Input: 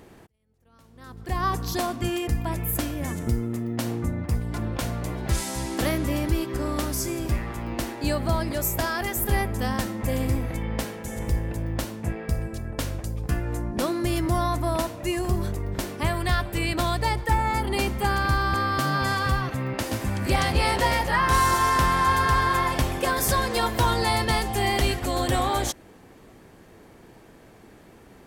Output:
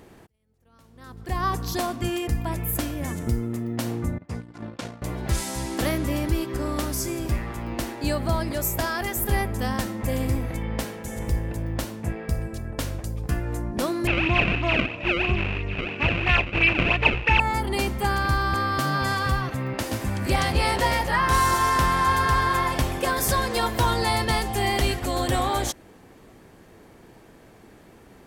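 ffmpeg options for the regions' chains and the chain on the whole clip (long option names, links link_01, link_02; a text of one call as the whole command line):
ffmpeg -i in.wav -filter_complex "[0:a]asettb=1/sr,asplit=3[link_01][link_02][link_03];[link_01]atrim=end=4.184[link_04];[link_02]atrim=start=4.18:end=5.02,asetpts=PTS-STARTPTS,afade=type=in:duration=0.004:curve=qsin,afade=type=out:start_time=0.836:duration=0.004:curve=qsin,agate=range=-20dB:threshold=-28dB:ratio=16:release=100:detection=peak,highpass=140,lowpass=6700[link_05];[link_03]atrim=start=5.016[link_06];[link_04][link_05]acrossfade=duration=0.004:curve1=hsin:curve2=qsin[link_07];[link_07][link_06]acrossfade=duration=0.004:curve1=qsin:curve2=hsin,asettb=1/sr,asplit=3[link_08][link_09][link_10];[link_08]atrim=end=14.074[link_11];[link_09]atrim=start=14.07:end=17.4,asetpts=PTS-STARTPTS,afade=type=in:duration=0.004:curve=qsin,afade=type=out:start_time=3.326:duration=0.004:curve=qsin,acrusher=samples=29:mix=1:aa=0.000001:lfo=1:lforange=46.4:lforate=3,lowpass=frequency=2600:width_type=q:width=14[link_12];[link_10]atrim=start=17.396[link_13];[link_11][link_12]acrossfade=duration=0.004:curve1=hsin:curve2=qsin[link_14];[link_14][link_13]acrossfade=duration=0.004:curve1=qsin:curve2=hsin" out.wav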